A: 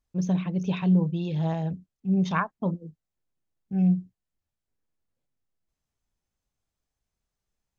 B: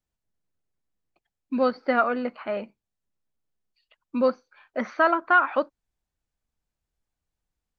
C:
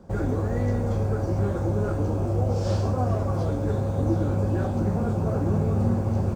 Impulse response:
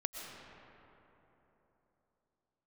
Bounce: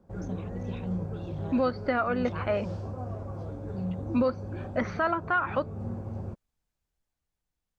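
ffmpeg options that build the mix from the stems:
-filter_complex "[0:a]volume=0.237[s0];[1:a]dynaudnorm=f=240:g=11:m=1.58,volume=0.794[s1];[2:a]highshelf=f=3700:g=-10,volume=0.251[s2];[s0][s1][s2]amix=inputs=3:normalize=0,alimiter=limit=0.15:level=0:latency=1:release=278"

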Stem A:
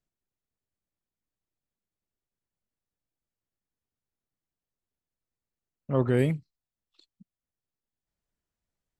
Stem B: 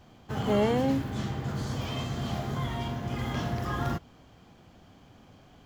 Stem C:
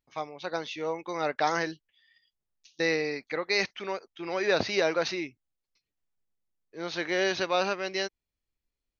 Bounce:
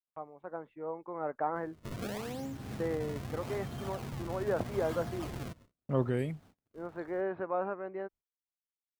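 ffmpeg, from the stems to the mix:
-filter_complex "[0:a]volume=0.891,afade=t=out:st=5.74:d=0.5:silence=0.334965[s0];[1:a]acompressor=threshold=0.0355:ratio=6,acrusher=samples=31:mix=1:aa=0.000001:lfo=1:lforange=49.6:lforate=0.8,adelay=1550,volume=0.447[s1];[2:a]lowpass=f=1300:w=0.5412,lowpass=f=1300:w=1.3066,dynaudnorm=f=350:g=5:m=1.41,volume=0.376[s2];[s0][s1][s2]amix=inputs=3:normalize=0,agate=range=0.0251:threshold=0.00158:ratio=16:detection=peak"

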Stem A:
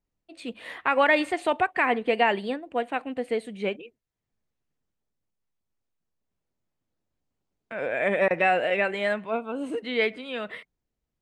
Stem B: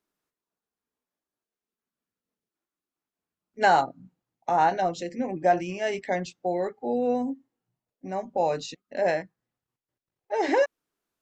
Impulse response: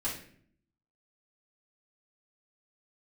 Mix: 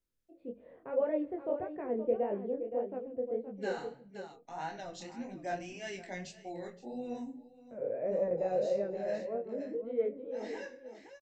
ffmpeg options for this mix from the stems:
-filter_complex "[0:a]lowpass=f=520:t=q:w=4.9,volume=0.794,asplit=4[s0][s1][s2][s3];[s1]volume=0.0794[s4];[s2]volume=0.335[s5];[1:a]volume=0.668,asplit=3[s6][s7][s8];[s7]volume=0.251[s9];[s8]volume=0.158[s10];[s3]apad=whole_len=494602[s11];[s6][s11]sidechaincompress=threshold=0.02:ratio=8:attack=7.2:release=1090[s12];[2:a]atrim=start_sample=2205[s13];[s4][s9]amix=inputs=2:normalize=0[s14];[s14][s13]afir=irnorm=-1:irlink=0[s15];[s5][s10]amix=inputs=2:normalize=0,aecho=0:1:521:1[s16];[s0][s12][s15][s16]amix=inputs=4:normalize=0,equalizer=f=640:w=0.39:g=-12,flanger=delay=19.5:depth=8:speed=1.7"

